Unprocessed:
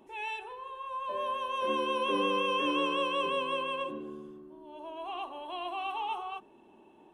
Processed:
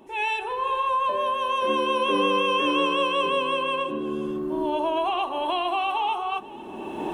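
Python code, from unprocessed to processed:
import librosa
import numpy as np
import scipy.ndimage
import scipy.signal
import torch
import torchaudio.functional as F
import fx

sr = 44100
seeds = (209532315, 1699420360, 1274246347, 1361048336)

y = fx.recorder_agc(x, sr, target_db=-24.5, rise_db_per_s=23.0, max_gain_db=30)
y = y + 10.0 ** (-19.0 / 20.0) * np.pad(y, (int(491 * sr / 1000.0), 0))[:len(y)]
y = y * 10.0 ** (7.0 / 20.0)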